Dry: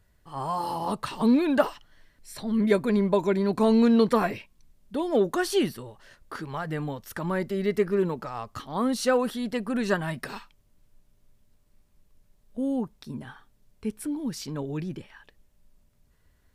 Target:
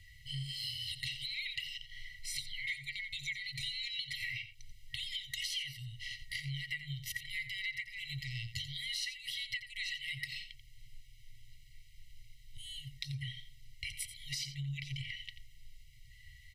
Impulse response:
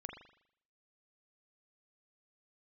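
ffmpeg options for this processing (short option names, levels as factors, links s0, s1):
-filter_complex "[0:a]afftfilt=real='re*(1-between(b*sr/4096,140,1900))':imag='im*(1-between(b*sr/4096,140,1900))':win_size=4096:overlap=0.75,acrossover=split=190 4800:gain=0.224 1 0.224[s0][s1][s2];[s0][s1][s2]amix=inputs=3:normalize=0,bandreject=f=50:t=h:w=6,bandreject=f=100:t=h:w=6,bandreject=f=150:t=h:w=6,bandreject=f=200:t=h:w=6,bandreject=f=250:t=h:w=6,bandreject=f=300:t=h:w=6,bandreject=f=350:t=h:w=6,bandreject=f=400:t=h:w=6,aecho=1:1:1:0.87,acompressor=threshold=0.00251:ratio=8,asplit=2[s3][s4];[s4]aecho=0:1:87:0.251[s5];[s3][s5]amix=inputs=2:normalize=0,volume=5.31"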